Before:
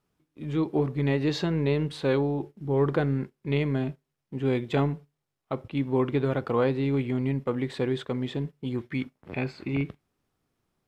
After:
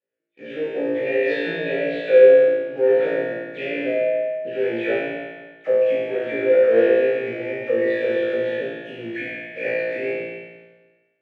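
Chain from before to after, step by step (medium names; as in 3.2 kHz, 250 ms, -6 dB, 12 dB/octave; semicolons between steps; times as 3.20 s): delay that grows with frequency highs early, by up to 157 ms; low-pass 3.7 kHz; hum notches 50/100/150/200/250/300 Hz; waveshaping leveller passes 3; in parallel at -1 dB: peak limiter -22.5 dBFS, peak gain reduction 10 dB; on the sum: vowel filter e; tape speed -3%; flutter echo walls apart 3 m, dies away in 1.3 s; spring tank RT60 1.3 s, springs 38/58 ms, chirp 40 ms, DRR 2.5 dB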